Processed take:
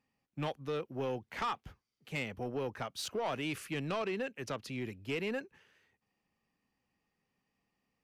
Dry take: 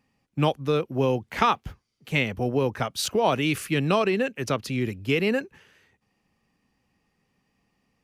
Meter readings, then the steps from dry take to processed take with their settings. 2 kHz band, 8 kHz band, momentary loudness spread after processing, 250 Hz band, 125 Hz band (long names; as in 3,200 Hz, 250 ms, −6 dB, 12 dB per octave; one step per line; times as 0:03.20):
−12.0 dB, −12.0 dB, 6 LU, −13.5 dB, −14.5 dB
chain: low-shelf EQ 250 Hz −5 dB
soft clipping −19.5 dBFS, distortion −13 dB
high-shelf EQ 7,200 Hz −5 dB
level −9 dB